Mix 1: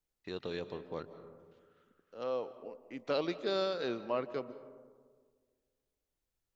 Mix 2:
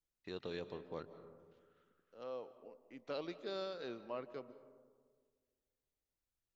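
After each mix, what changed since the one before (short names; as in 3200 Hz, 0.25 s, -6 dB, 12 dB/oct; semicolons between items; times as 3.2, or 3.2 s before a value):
first voice -4.5 dB; second voice -9.5 dB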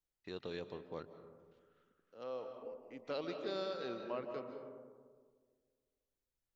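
second voice: send +11.5 dB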